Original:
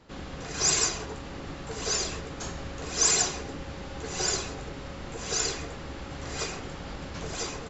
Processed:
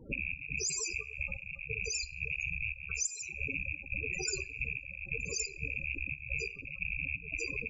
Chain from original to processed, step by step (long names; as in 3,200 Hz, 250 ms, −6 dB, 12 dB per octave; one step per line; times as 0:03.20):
loose part that buzzes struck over −41 dBFS, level −15 dBFS
dynamic equaliser 710 Hz, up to −6 dB, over −55 dBFS, Q 7.2
brickwall limiter −18.5 dBFS, peak gain reduction 10 dB
0:01.01–0:03.29: parametric band 300 Hz −13.5 dB 0.57 octaves
gate pattern "xx.xxx.x.." 88 BPM −12 dB
downward compressor 3 to 1, threshold −36 dBFS, peak gain reduction 8.5 dB
spectral peaks only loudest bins 16
coupled-rooms reverb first 0.4 s, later 1.6 s, from −27 dB, DRR 15.5 dB
level +7 dB